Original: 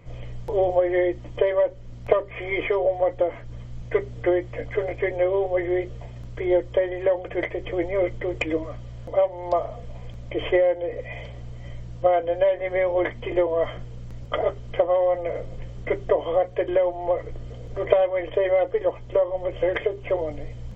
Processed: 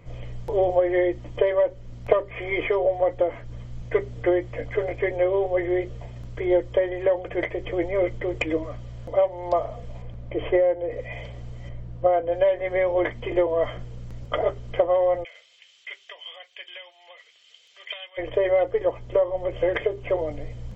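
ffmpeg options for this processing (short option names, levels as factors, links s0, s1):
-filter_complex "[0:a]asettb=1/sr,asplit=3[s0][s1][s2];[s0]atrim=end=10.024[s3];[s1]atrim=start=10.02:end=10.9,asetpts=PTS-STARTPTS,afade=t=in:d=0.004:c=qsin,afade=t=out:st=0.876:d=0.004:c=qsin,lowpass=f=1500:p=1[s4];[s2]atrim=start=10.896[s5];[s3][s4]acrossfade=d=0.004:c1=hsin:c2=qsin[s6];[s6][s5]acrossfade=d=0.004:c1=qsin:c2=hsin,asettb=1/sr,asplit=3[s7][s8][s9];[s7]atrim=end=11.694[s10];[s8]atrim=start=11.69:end=12.32,asetpts=PTS-STARTPTS,afade=t=in:d=0.004:c=qsin,afade=t=out:st=0.626:d=0.004:c=qsin,lowpass=f=1400:p=1[s11];[s9]atrim=start=12.316[s12];[s10][s11]acrossfade=d=0.004:c1=hsin:c2=qsin[s13];[s13][s12]acrossfade=d=0.004:c1=qsin:c2=hsin,asplit=3[s14][s15][s16];[s14]afade=t=out:st=15.23:d=0.02[s17];[s15]highpass=f=3000:t=q:w=2.3,afade=t=in:st=15.23:d=0.02,afade=t=out:st=18.17:d=0.02[s18];[s16]afade=t=in:st=18.17:d=0.02[s19];[s17][s18][s19]amix=inputs=3:normalize=0"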